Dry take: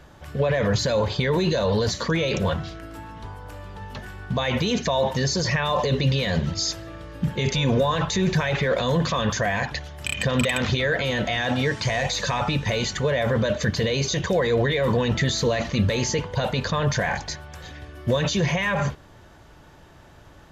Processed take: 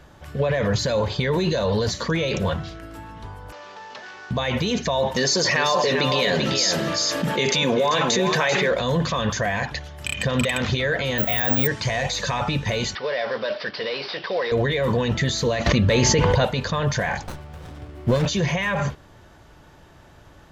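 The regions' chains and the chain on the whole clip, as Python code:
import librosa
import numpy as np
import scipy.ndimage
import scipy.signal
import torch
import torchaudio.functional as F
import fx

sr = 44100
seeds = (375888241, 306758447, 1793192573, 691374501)

y = fx.chain(x, sr, fx.cvsd(bps=32000),
    fx.highpass(hz=490.0, slope=12),
    fx.env_flatten(amount_pct=50), at=(3.52, 4.31))
y = fx.chain(y, sr, fx.highpass(hz=280.0, slope=12),
    fx.echo_single(ms=390, db=-7.5),
    fx.env_flatten(amount_pct=70), at=(5.16, 8.71))
y = fx.chain(y, sr, fx.high_shelf(hz=4300.0, db=-4.5),
    fx.resample_bad(factor=2, down='filtered', up='zero_stuff'), at=(11.18, 11.67))
y = fx.chain(y, sr, fx.cvsd(bps=32000),
    fx.highpass(hz=460.0, slope=12),
    fx.resample_bad(factor=4, down='none', up='filtered'), at=(12.95, 14.52))
y = fx.chain(y, sr, fx.high_shelf(hz=5900.0, db=-9.0),
    fx.env_flatten(amount_pct=100), at=(15.66, 16.45))
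y = fx.chain(y, sr, fx.highpass(hz=110.0, slope=6),
    fx.low_shelf(hz=340.0, db=7.0),
    fx.running_max(window=17), at=(17.23, 18.26))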